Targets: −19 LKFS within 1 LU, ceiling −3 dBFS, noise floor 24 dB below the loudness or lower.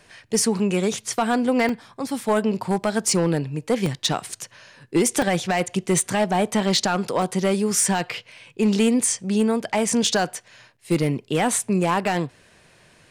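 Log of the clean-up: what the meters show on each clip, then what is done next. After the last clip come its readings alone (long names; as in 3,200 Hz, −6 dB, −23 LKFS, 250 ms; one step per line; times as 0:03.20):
share of clipped samples 0.6%; peaks flattened at −12.5 dBFS; number of dropouts 7; longest dropout 2.2 ms; integrated loudness −22.0 LKFS; sample peak −12.5 dBFS; target loudness −19.0 LKFS
→ clipped peaks rebuilt −12.5 dBFS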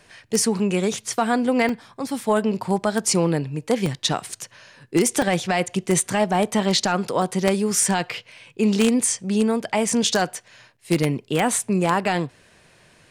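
share of clipped samples 0.0%; number of dropouts 7; longest dropout 2.2 ms
→ repair the gap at 0:01.69/0:02.64/0:03.86/0:05.22/0:07.22/0:08.37/0:09.89, 2.2 ms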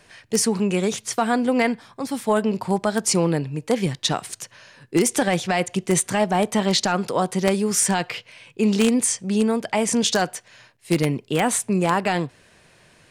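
number of dropouts 0; integrated loudness −22.0 LKFS; sample peak −3.5 dBFS; target loudness −19.0 LKFS
→ level +3 dB
brickwall limiter −3 dBFS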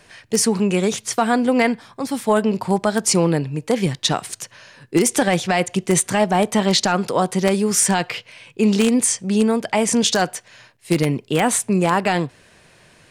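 integrated loudness −19.0 LKFS; sample peak −3.0 dBFS; background noise floor −53 dBFS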